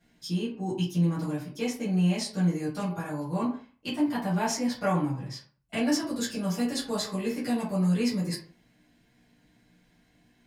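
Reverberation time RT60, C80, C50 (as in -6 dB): 0.45 s, 11.5 dB, 7.0 dB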